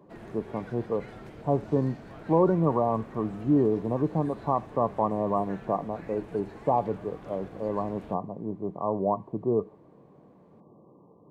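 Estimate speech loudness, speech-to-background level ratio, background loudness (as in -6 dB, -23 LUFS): -28.5 LUFS, 17.0 dB, -45.5 LUFS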